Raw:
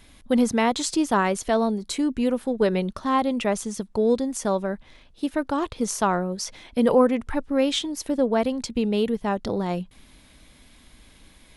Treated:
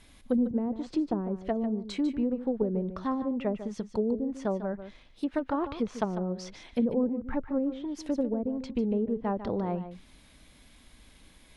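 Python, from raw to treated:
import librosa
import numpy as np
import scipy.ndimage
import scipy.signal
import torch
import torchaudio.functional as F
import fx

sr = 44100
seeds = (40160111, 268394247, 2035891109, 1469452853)

p1 = fx.env_lowpass_down(x, sr, base_hz=330.0, full_db=-17.5)
p2 = fx.peak_eq(p1, sr, hz=3300.0, db=4.0, octaves=3.0, at=(5.29, 6.08))
p3 = p2 + fx.echo_single(p2, sr, ms=148, db=-11.5, dry=0)
y = F.gain(torch.from_numpy(p3), -4.5).numpy()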